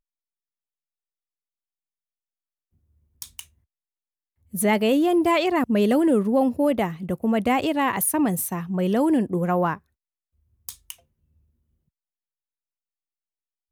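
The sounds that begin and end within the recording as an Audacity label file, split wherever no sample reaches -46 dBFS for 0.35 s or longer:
3.220000	3.450000	sound
4.530000	9.780000	sound
10.690000	10.950000	sound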